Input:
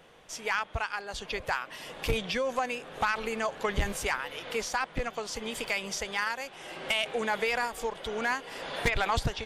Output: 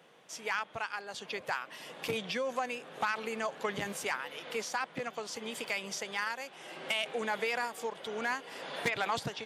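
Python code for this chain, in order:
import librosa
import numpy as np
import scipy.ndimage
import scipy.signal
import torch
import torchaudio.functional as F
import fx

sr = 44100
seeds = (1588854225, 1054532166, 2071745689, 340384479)

y = scipy.signal.sosfilt(scipy.signal.butter(4, 140.0, 'highpass', fs=sr, output='sos'), x)
y = y * 10.0 ** (-4.0 / 20.0)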